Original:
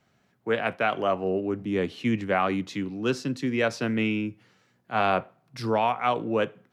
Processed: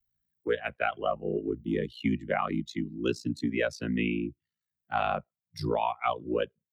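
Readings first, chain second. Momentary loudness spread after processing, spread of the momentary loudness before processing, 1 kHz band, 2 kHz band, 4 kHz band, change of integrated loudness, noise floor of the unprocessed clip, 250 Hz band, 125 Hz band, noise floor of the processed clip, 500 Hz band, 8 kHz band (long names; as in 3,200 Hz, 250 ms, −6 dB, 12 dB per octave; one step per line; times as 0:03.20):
5 LU, 6 LU, −4.5 dB, −5.0 dB, −5.0 dB, −4.0 dB, −68 dBFS, −3.5 dB, −3.0 dB, below −85 dBFS, −4.5 dB, −5.5 dB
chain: spectral dynamics exaggerated over time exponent 2
ring modulation 29 Hz
multiband upward and downward compressor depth 70%
level +2.5 dB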